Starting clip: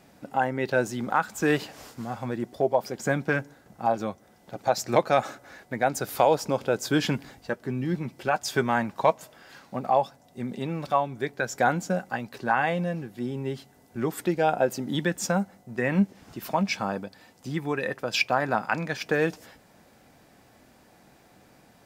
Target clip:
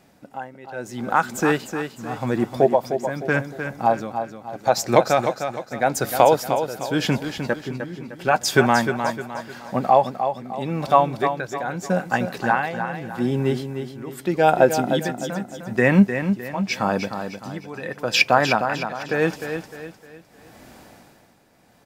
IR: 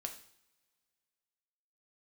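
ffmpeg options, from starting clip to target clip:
-af "tremolo=f=0.82:d=0.85,dynaudnorm=f=320:g=7:m=11.5dB,aecho=1:1:305|610|915|1220:0.398|0.155|0.0606|0.0236"

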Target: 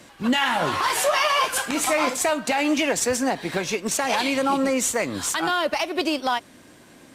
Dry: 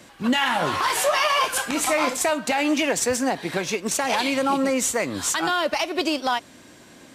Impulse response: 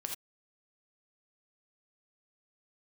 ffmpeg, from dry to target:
-ar 48000 -c:a libopus -b:a 48k

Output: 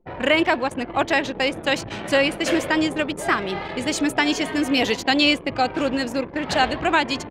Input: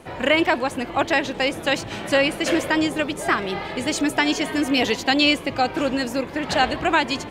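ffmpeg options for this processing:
-af "anlmdn=10"

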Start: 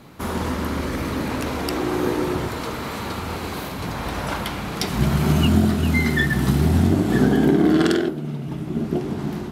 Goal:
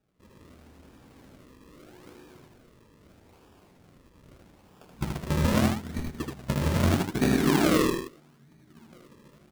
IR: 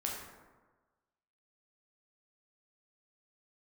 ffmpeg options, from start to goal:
-af "agate=range=-23dB:threshold=-16dB:ratio=16:detection=peak,acrusher=samples=41:mix=1:aa=0.000001:lfo=1:lforange=41:lforate=0.79,aecho=1:1:78:0.668,volume=-6.5dB"

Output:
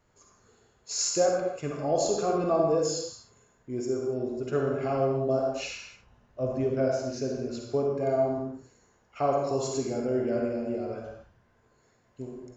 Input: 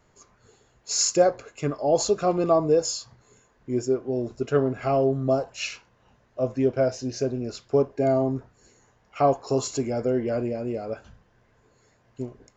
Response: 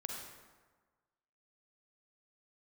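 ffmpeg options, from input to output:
-filter_complex "[0:a]asettb=1/sr,asplit=3[a][b][c];[a]atrim=end=5.504[d];[b]atrim=start=5.5:end=6.64,asetpts=PTS-STARTPTS,afade=t=in:d=0.004:c=qsin,afade=t=out:st=1.136:d=0.004:c=qsin,lowshelf=f=120:g=10.5[e];[c]atrim=start=6.636[f];[d][e]acrossfade=d=0.004:c1=hsin:c2=qsin[g];[g][f]acrossfade=d=0.004:c1=qsin:c2=hsin[h];[1:a]atrim=start_sample=2205,afade=t=out:st=0.35:d=0.01,atrim=end_sample=15876[i];[h][i]afir=irnorm=-1:irlink=0,volume=-3dB"

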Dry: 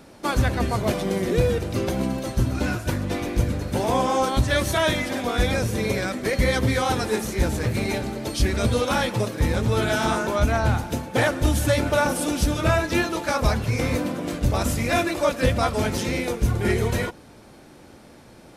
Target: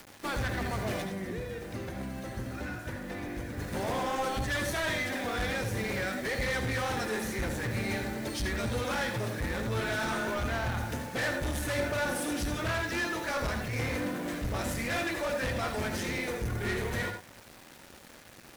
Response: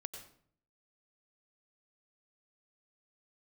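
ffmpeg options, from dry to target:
-filter_complex "[0:a]equalizer=f=1.8k:t=o:w=0.61:g=9,acrusher=bits=6:mix=0:aa=0.000001,asettb=1/sr,asplit=3[a][b][c];[a]atrim=end=1.034[d];[b]atrim=start=1.03:end=3.58,asetpts=PTS-STARTPTS,afade=t=in:d=0.004:c=qsin,afade=t=out:st=2.546:d=0.004:c=qsin,acrossover=split=200|2200[e][f][g];[e]acompressor=threshold=-33dB:ratio=4[h];[f]acompressor=threshold=-32dB:ratio=4[i];[g]acompressor=threshold=-46dB:ratio=4[j];[h][i][j]amix=inputs=3:normalize=0[k];[c]atrim=start=3.576[l];[d][k]acrossfade=d=0.004:c1=hsin:c2=qsin[m];[m][l]acrossfade=d=0.004:c1=qsin:c2=hsin,asoftclip=type=tanh:threshold=-22.5dB,acompressor=mode=upward:threshold=-41dB:ratio=2.5[n];[1:a]atrim=start_sample=2205,atrim=end_sample=6174,asetrate=57330,aresample=44100[o];[n][o]afir=irnorm=-1:irlink=0"

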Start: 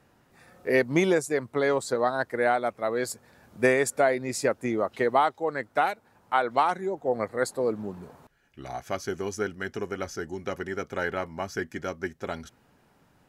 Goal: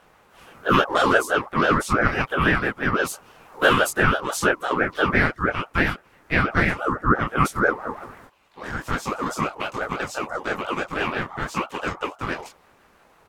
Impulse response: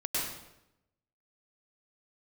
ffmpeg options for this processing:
-filter_complex "[0:a]equalizer=f=510:t=o:w=0.4:g=5,bandreject=f=336.5:t=h:w=4,bandreject=f=673:t=h:w=4,asplit=2[a][b];[b]acompressor=threshold=-32dB:ratio=6,volume=-3dB[c];[a][c]amix=inputs=2:normalize=0,asplit=2[d][e];[e]adelay=26,volume=-4dB[f];[d][f]amix=inputs=2:normalize=0,asplit=4[g][h][i][j];[h]asetrate=33038,aresample=44100,atempo=1.33484,volume=-9dB[k];[i]asetrate=52444,aresample=44100,atempo=0.840896,volume=-2dB[l];[j]asetrate=58866,aresample=44100,atempo=0.749154,volume=-11dB[m];[g][k][l][m]amix=inputs=4:normalize=0,aeval=exprs='val(0)*sin(2*PI*850*n/s+850*0.25/6*sin(2*PI*6*n/s))':c=same"

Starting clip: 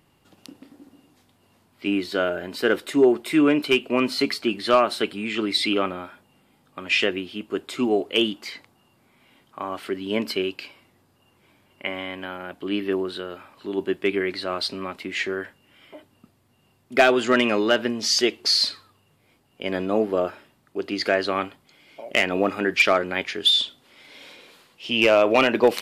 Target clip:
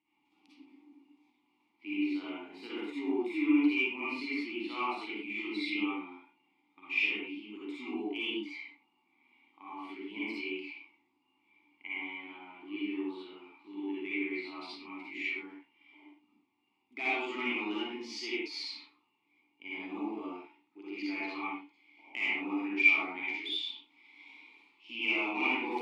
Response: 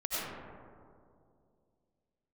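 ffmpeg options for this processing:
-filter_complex "[0:a]asplit=3[a][b][c];[a]bandpass=f=300:t=q:w=8,volume=0dB[d];[b]bandpass=f=870:t=q:w=8,volume=-6dB[e];[c]bandpass=f=2.24k:t=q:w=8,volume=-9dB[f];[d][e][f]amix=inputs=3:normalize=0,tiltshelf=f=1.1k:g=-8[g];[1:a]atrim=start_sample=2205,afade=t=out:st=0.4:d=0.01,atrim=end_sample=18081,asetrate=79380,aresample=44100[h];[g][h]afir=irnorm=-1:irlink=0"

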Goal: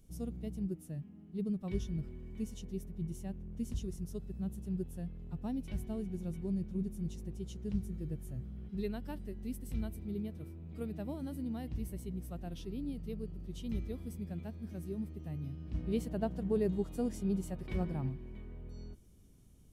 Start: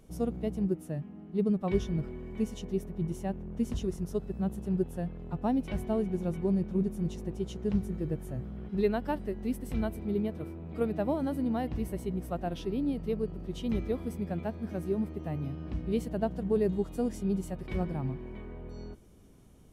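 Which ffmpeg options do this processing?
-af "asetnsamples=n=441:p=0,asendcmd='15.74 equalizer g -4;18.09 equalizer g -11.5',equalizer=f=830:w=0.33:g=-14,volume=-1.5dB"

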